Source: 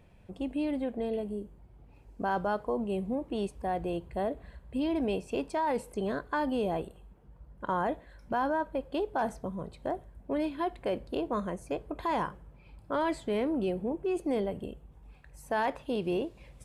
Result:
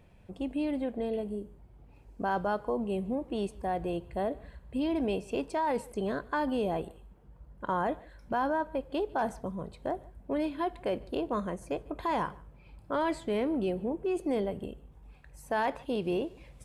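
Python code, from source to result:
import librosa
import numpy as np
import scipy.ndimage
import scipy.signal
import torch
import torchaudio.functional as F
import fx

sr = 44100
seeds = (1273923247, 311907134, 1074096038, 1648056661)

y = x + 10.0 ** (-24.0 / 20.0) * np.pad(x, (int(148 * sr / 1000.0), 0))[:len(x)]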